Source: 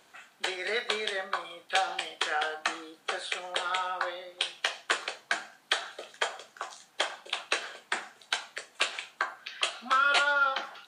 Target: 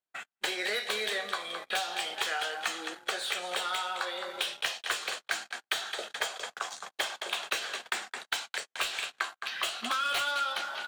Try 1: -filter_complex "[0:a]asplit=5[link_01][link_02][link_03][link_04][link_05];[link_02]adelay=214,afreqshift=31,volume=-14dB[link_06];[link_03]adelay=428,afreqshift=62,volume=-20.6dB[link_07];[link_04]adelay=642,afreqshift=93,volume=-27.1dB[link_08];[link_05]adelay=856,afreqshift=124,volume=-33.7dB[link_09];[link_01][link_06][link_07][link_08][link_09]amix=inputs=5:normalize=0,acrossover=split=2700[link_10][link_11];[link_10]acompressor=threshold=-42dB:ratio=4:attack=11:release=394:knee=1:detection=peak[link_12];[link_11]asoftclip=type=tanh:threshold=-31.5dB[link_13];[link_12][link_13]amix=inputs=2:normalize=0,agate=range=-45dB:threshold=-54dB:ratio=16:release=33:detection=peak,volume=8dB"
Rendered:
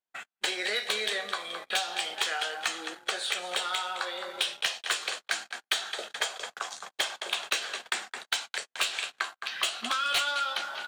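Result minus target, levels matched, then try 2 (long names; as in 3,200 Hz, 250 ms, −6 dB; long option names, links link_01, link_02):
soft clipping: distortion −5 dB
-filter_complex "[0:a]asplit=5[link_01][link_02][link_03][link_04][link_05];[link_02]adelay=214,afreqshift=31,volume=-14dB[link_06];[link_03]adelay=428,afreqshift=62,volume=-20.6dB[link_07];[link_04]adelay=642,afreqshift=93,volume=-27.1dB[link_08];[link_05]adelay=856,afreqshift=124,volume=-33.7dB[link_09];[link_01][link_06][link_07][link_08][link_09]amix=inputs=5:normalize=0,acrossover=split=2700[link_10][link_11];[link_10]acompressor=threshold=-42dB:ratio=4:attack=11:release=394:knee=1:detection=peak[link_12];[link_11]asoftclip=type=tanh:threshold=-40dB[link_13];[link_12][link_13]amix=inputs=2:normalize=0,agate=range=-45dB:threshold=-54dB:ratio=16:release=33:detection=peak,volume=8dB"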